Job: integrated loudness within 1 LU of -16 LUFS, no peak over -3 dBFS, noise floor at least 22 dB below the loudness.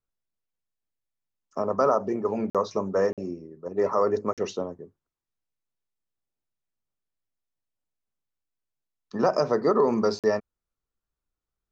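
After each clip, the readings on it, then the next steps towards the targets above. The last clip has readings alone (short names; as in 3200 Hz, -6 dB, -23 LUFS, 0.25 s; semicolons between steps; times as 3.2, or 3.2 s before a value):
dropouts 4; longest dropout 47 ms; loudness -26.0 LUFS; peak -10.5 dBFS; loudness target -16.0 LUFS
-> interpolate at 2.5/3.13/4.33/10.19, 47 ms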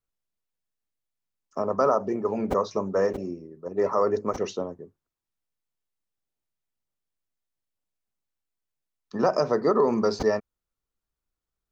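dropouts 0; loudness -25.5 LUFS; peak -10.5 dBFS; loudness target -16.0 LUFS
-> gain +9.5 dB; limiter -3 dBFS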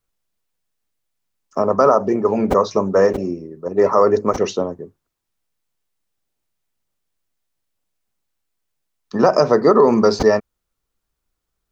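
loudness -16.5 LUFS; peak -3.0 dBFS; noise floor -78 dBFS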